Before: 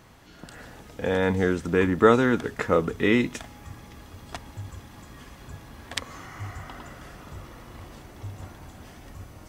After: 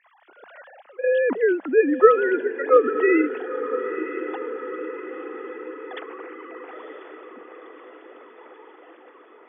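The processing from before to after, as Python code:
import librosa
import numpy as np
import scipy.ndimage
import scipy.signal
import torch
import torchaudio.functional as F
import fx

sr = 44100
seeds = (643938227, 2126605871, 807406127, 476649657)

p1 = fx.sine_speech(x, sr)
p2 = scipy.signal.sosfilt(scipy.signal.butter(2, 2900.0, 'lowpass', fs=sr, output='sos'), p1)
p3 = fx.rider(p2, sr, range_db=10, speed_s=0.5)
p4 = p2 + (p3 * 10.0 ** (-1.0 / 20.0))
p5 = scipy.signal.sosfilt(scipy.signal.cheby1(6, 3, 190.0, 'highpass', fs=sr, output='sos'), p4)
y = p5 + fx.echo_diffused(p5, sr, ms=971, feedback_pct=60, wet_db=-10, dry=0)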